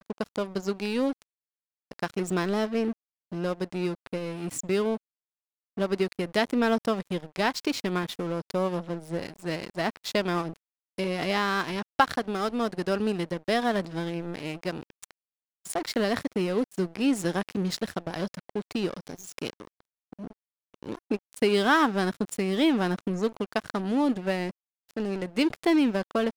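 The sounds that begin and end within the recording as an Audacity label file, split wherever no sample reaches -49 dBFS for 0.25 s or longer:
1.910000	2.930000	sound
3.320000	4.970000	sound
5.770000	10.570000	sound
10.980000	15.110000	sound
15.650000	19.800000	sound
20.130000	20.330000	sound
20.740000	24.510000	sound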